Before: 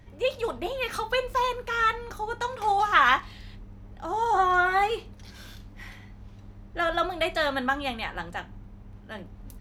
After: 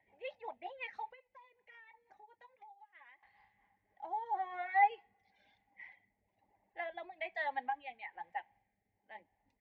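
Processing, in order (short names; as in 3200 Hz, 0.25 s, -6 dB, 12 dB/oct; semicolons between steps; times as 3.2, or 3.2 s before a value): double band-pass 1300 Hz, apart 1.3 oct; air absorption 130 m; plate-style reverb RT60 2.6 s, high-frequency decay 0.95×, DRR 20 dB; reverb removal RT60 1.7 s; rotary speaker horn 5.5 Hz, later 1.1 Hz, at 3.25; 1.11–3.23 compressor 10:1, threshold -57 dBFS, peak gain reduction 30.5 dB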